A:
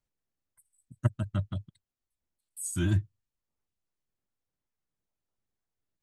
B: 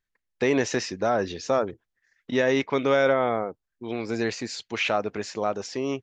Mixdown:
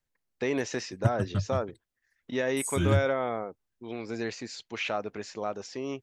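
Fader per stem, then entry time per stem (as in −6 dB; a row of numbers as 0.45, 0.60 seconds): +1.0, −6.5 decibels; 0.00, 0.00 seconds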